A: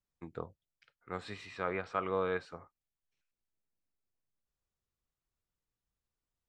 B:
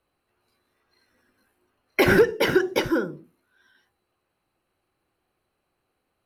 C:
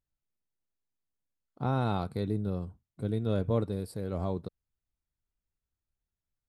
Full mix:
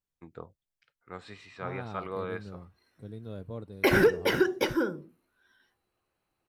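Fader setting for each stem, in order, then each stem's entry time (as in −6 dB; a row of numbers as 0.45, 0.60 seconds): −2.5, −4.5, −11.5 decibels; 0.00, 1.85, 0.00 seconds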